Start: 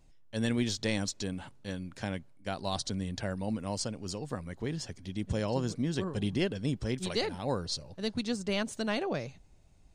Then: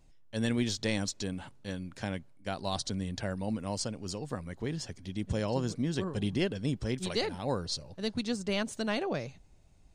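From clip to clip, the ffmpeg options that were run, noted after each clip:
-af anull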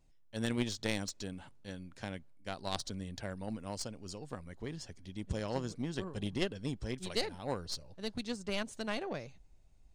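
-af "asubboost=boost=2:cutoff=69,aeval=exprs='0.158*(cos(1*acos(clip(val(0)/0.158,-1,1)))-cos(1*PI/2))+0.0355*(cos(3*acos(clip(val(0)/0.158,-1,1)))-cos(3*PI/2))':c=same,volume=1.33"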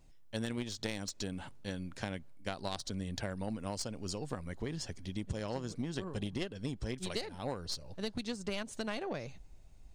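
-af "acompressor=threshold=0.00891:ratio=6,volume=2.24"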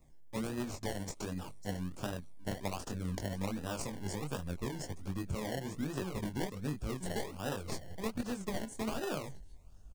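-filter_complex "[0:a]flanger=delay=20:depth=3.2:speed=1.2,acrossover=split=240|5800[s0][s1][s2];[s1]acrusher=samples=28:mix=1:aa=0.000001:lfo=1:lforange=16.8:lforate=1.3[s3];[s2]aecho=1:1:551:0.2[s4];[s0][s3][s4]amix=inputs=3:normalize=0,volume=1.58"

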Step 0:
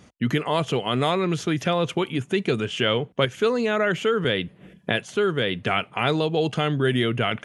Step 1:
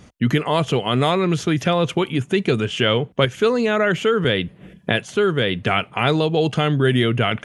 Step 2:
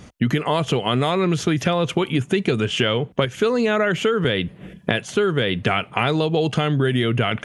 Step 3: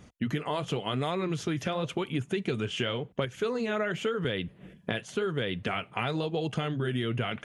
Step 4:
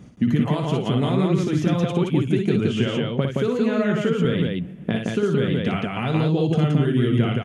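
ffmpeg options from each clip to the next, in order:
-af "lowshelf=f=88:g=8,volume=1.5"
-af "acompressor=threshold=0.112:ratio=6,volume=1.5"
-af "flanger=delay=0.1:depth=9.3:regen=-64:speed=0.92:shape=sinusoidal,volume=0.473"
-filter_complex "[0:a]equalizer=f=190:w=0.61:g=11.5,asplit=2[s0][s1];[s1]aecho=0:1:58.31|172:0.562|0.794[s2];[s0][s2]amix=inputs=2:normalize=0"

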